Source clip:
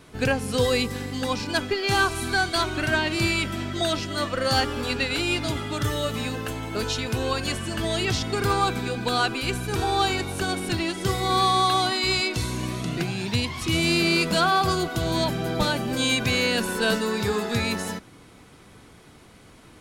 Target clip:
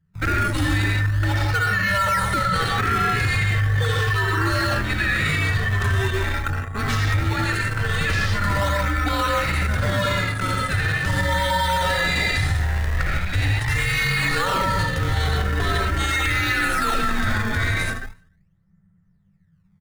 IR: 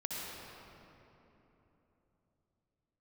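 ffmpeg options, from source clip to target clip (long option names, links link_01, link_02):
-filter_complex "[1:a]atrim=start_sample=2205,afade=type=out:start_time=0.23:duration=0.01,atrim=end_sample=10584[link_01];[0:a][link_01]afir=irnorm=-1:irlink=0,anlmdn=25.1,equalizer=frequency=100:width_type=o:width=0.33:gain=10,equalizer=frequency=400:width_type=o:width=0.33:gain=-5,equalizer=frequency=1600:width_type=o:width=0.33:gain=9,equalizer=frequency=10000:width_type=o:width=0.33:gain=6,aecho=1:1:100|200|300:0.0631|0.0303|0.0145,asplit=2[link_02][link_03];[link_03]acrusher=samples=25:mix=1:aa=0.000001:lfo=1:lforange=40:lforate=0.41,volume=-4.5dB[link_04];[link_02][link_04]amix=inputs=2:normalize=0,afreqshift=-200,equalizer=frequency=1800:width_type=o:width=0.35:gain=14.5,alimiter=limit=-12.5dB:level=0:latency=1:release=25"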